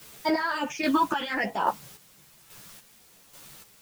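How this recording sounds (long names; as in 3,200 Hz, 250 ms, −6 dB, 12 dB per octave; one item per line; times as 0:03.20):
phaser sweep stages 8, 0.69 Hz, lowest notch 590–2,700 Hz
a quantiser's noise floor 10 bits, dither triangular
chopped level 1.2 Hz, depth 60%, duty 35%
a shimmering, thickened sound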